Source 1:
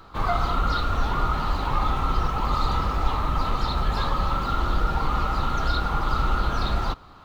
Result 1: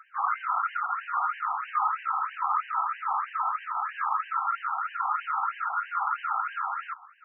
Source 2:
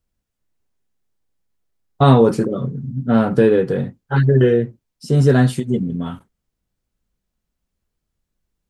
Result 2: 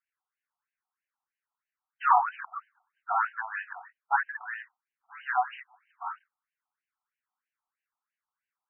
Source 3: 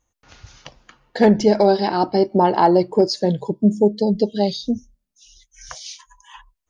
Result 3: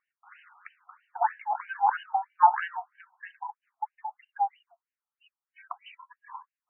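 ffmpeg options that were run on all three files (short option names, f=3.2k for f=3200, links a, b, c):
-af "lowshelf=f=530:t=q:w=1.5:g=-13,afftfilt=real='re*between(b*sr/1024,950*pow(2200/950,0.5+0.5*sin(2*PI*3.1*pts/sr))/1.41,950*pow(2200/950,0.5+0.5*sin(2*PI*3.1*pts/sr))*1.41)':imag='im*between(b*sr/1024,950*pow(2200/950,0.5+0.5*sin(2*PI*3.1*pts/sr))/1.41,950*pow(2200/950,0.5+0.5*sin(2*PI*3.1*pts/sr))*1.41)':win_size=1024:overlap=0.75"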